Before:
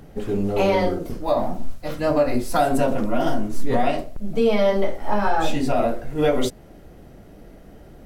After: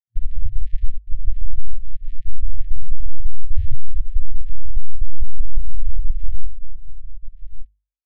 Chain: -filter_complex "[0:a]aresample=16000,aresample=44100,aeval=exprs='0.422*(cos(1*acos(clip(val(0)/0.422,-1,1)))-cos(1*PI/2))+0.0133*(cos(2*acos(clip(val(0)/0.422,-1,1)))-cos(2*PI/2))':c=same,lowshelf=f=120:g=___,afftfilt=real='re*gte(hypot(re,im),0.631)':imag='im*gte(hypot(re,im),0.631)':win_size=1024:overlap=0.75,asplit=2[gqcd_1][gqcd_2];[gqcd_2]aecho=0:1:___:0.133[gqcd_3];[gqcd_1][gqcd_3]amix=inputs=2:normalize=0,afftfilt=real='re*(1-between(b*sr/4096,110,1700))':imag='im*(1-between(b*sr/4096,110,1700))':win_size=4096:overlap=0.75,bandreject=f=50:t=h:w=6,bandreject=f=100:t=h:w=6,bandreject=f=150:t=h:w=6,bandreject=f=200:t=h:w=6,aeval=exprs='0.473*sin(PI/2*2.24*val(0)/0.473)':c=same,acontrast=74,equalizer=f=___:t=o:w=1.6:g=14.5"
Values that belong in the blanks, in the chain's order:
4, 1181, 3.3k